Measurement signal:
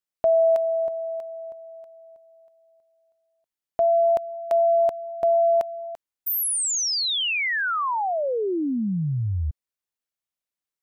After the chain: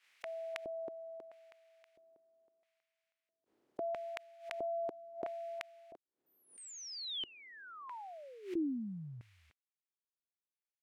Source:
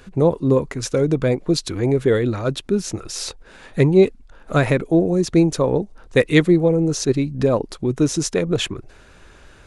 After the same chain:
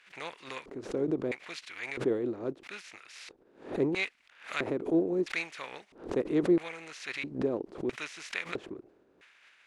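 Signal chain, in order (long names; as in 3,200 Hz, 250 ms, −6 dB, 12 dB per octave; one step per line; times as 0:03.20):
compressing power law on the bin magnitudes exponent 0.58
auto-filter band-pass square 0.76 Hz 350–2,200 Hz
background raised ahead of every attack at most 140 dB per second
level −7.5 dB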